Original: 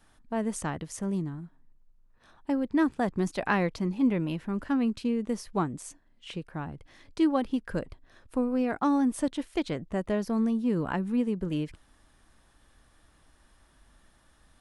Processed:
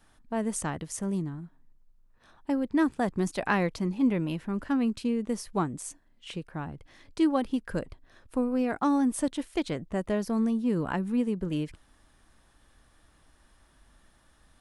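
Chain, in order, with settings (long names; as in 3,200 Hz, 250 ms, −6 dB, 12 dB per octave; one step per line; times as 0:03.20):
dynamic equaliser 9,600 Hz, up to +5 dB, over −58 dBFS, Q 0.86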